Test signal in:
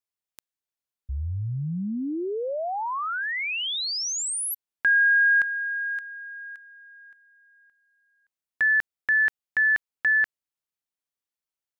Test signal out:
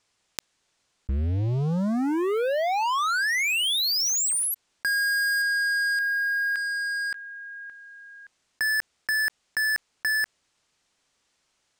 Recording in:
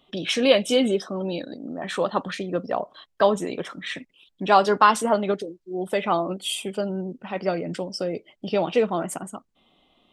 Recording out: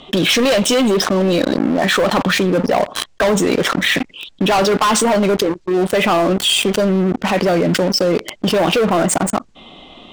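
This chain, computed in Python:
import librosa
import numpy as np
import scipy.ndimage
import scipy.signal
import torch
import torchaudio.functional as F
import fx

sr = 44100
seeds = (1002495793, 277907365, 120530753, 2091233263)

y = scipy.signal.sosfilt(scipy.signal.butter(4, 8100.0, 'lowpass', fs=sr, output='sos'), x)
y = fx.leveller(y, sr, passes=5)
y = fx.env_flatten(y, sr, amount_pct=70)
y = F.gain(torch.from_numpy(y), -7.5).numpy()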